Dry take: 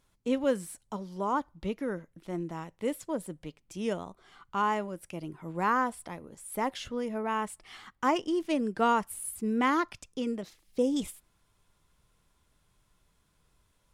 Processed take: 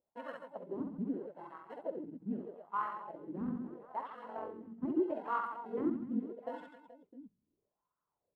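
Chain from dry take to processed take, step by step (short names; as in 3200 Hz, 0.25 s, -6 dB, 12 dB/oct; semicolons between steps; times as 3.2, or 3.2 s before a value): low-pass opened by the level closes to 810 Hz, open at -24.5 dBFS; in parallel at -4.5 dB: sample-and-hold 37×; on the sum: bell 5900 Hz -10.5 dB 0.67 oct; reverse bouncing-ball echo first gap 0.1 s, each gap 1.4×, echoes 5; wah 0.47 Hz 220–1200 Hz, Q 4.3; granular stretch 0.6×, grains 45 ms; gain -2 dB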